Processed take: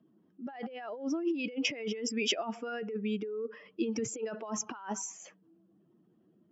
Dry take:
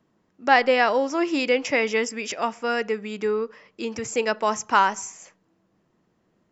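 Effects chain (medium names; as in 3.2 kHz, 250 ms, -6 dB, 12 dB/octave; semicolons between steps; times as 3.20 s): spectral contrast enhancement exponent 1.7; compressor with a negative ratio -30 dBFS, ratio -1; cabinet simulation 140–6100 Hz, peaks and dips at 330 Hz +4 dB, 520 Hz -5 dB, 980 Hz -6 dB, 2 kHz -6 dB, 3.2 kHz +9 dB; trim -5 dB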